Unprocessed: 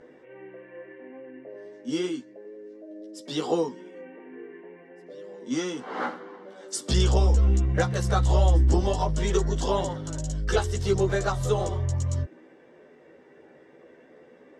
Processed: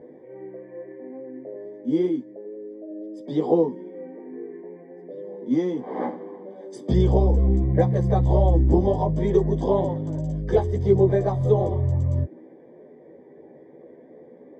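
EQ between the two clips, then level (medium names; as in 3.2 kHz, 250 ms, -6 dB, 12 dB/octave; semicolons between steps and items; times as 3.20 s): boxcar filter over 32 samples; high-pass 94 Hz 12 dB/octave; +7.5 dB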